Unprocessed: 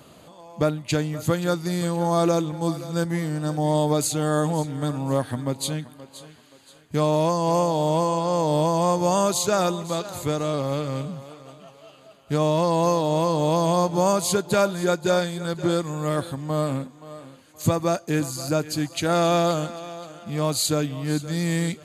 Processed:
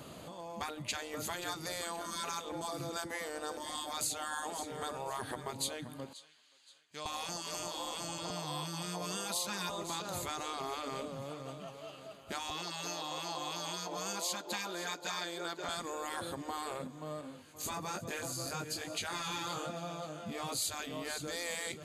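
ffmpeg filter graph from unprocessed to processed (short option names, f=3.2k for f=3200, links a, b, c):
-filter_complex "[0:a]asettb=1/sr,asplit=3[a][b][c];[a]atrim=end=6.134[d];[b]atrim=start=6.13:end=7.06,asetpts=PTS-STARTPTS,afade=t=in:d=0.004:c=qsin,afade=t=out:st=0.926:d=0.004:c=qsin,lowpass=4.4k,aderivative[e];[c]atrim=start=7.056[f];[d][e]acrossfade=d=0.004:c1=hsin:c2=qsin[g];[g][f]acrossfade=d=0.004:c1=qsin:c2=hsin,asettb=1/sr,asplit=3[h][i][j];[h]atrim=end=8.304[k];[i]atrim=start=8.3:end=9.7,asetpts=PTS-STARTPTS,afade=t=in:d=0.004:c=qsin,afade=t=out:st=1.396:d=0.004:c=qsin,highpass=330,equalizer=f=6.9k:w=6.1:g=-10[l];[j]atrim=start=9.696[m];[k][l]acrossfade=d=0.004:c1=hsin:c2=qsin[n];[n][m]acrossfade=d=0.004:c1=qsin:c2=hsin,asettb=1/sr,asplit=3[o][p][q];[o]atrim=end=12.504[r];[p]atrim=start=12.5:end=15.69,asetpts=PTS-STARTPTS,afade=t=in:d=0.004:c=qsin,afade=t=out:st=3.186:d=0.004:c=qsin,highpass=f=320:w=0.5412,highpass=f=320:w=1.3066,equalizer=f=9.8k:t=o:w=0.54:g=-9.5[s];[q]atrim=start=15.686[t];[r][s]acrossfade=d=0.004:c1=hsin:c2=qsin[u];[u][t]acrossfade=d=0.004:c1=qsin:c2=hsin,asettb=1/sr,asplit=3[v][w][x];[v]atrim=end=17.214[y];[w]atrim=start=17.21:end=20.62,asetpts=PTS-STARTPTS,afade=t=in:d=0.004:c=qsin,afade=t=out:st=3.406:d=0.004:c=qsin,flanger=delay=18.5:depth=3.7:speed=1.1,aecho=1:1:350:0.119,atrim=end_sample=150381[z];[x]atrim=start=20.616[aa];[y][z]acrossfade=d=0.004:c1=hsin:c2=qsin[ab];[ab][aa]acrossfade=d=0.004:c1=qsin:c2=hsin,afftfilt=real='re*lt(hypot(re,im),0.178)':imag='im*lt(hypot(re,im),0.178)':win_size=1024:overlap=0.75,acompressor=threshold=-39dB:ratio=2"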